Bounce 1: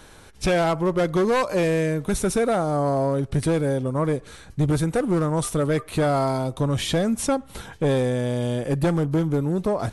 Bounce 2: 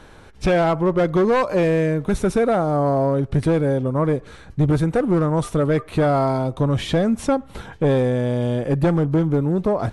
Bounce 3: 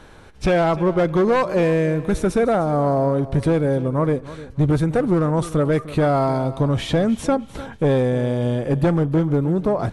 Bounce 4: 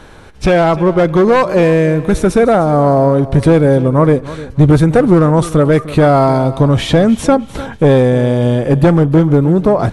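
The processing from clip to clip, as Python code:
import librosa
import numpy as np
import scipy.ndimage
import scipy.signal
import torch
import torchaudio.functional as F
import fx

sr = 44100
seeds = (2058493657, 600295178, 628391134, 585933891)

y1 = fx.lowpass(x, sr, hz=2200.0, slope=6)
y1 = y1 * librosa.db_to_amplitude(3.5)
y2 = fx.echo_feedback(y1, sr, ms=302, feedback_pct=30, wet_db=-16.5)
y3 = fx.rider(y2, sr, range_db=10, speed_s=2.0)
y3 = y3 * librosa.db_to_amplitude(8.5)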